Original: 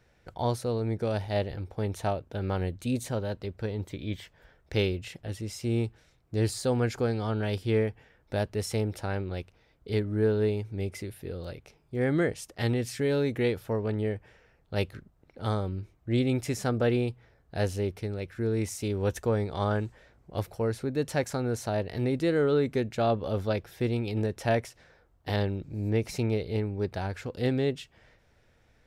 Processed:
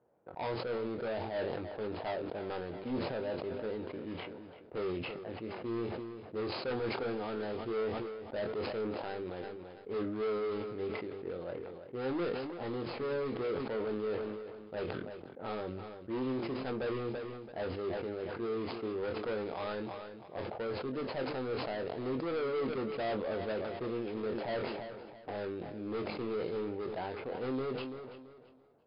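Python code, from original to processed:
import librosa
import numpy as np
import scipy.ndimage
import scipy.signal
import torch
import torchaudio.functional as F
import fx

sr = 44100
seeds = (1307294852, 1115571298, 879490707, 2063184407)

p1 = scipy.ndimage.median_filter(x, 25, mode='constant')
p2 = scipy.signal.sosfilt(scipy.signal.butter(2, 140.0, 'highpass', fs=sr, output='sos'), p1)
p3 = fx.env_lowpass(p2, sr, base_hz=1100.0, full_db=-26.0)
p4 = fx.bass_treble(p3, sr, bass_db=-12, treble_db=1)
p5 = np.clip(10.0 ** (33.5 / 20.0) * p4, -1.0, 1.0) / 10.0 ** (33.5 / 20.0)
p6 = fx.brickwall_lowpass(p5, sr, high_hz=5200.0)
p7 = fx.doubler(p6, sr, ms=23.0, db=-8)
p8 = p7 + fx.echo_feedback(p7, sr, ms=336, feedback_pct=34, wet_db=-15, dry=0)
y = fx.sustainer(p8, sr, db_per_s=31.0)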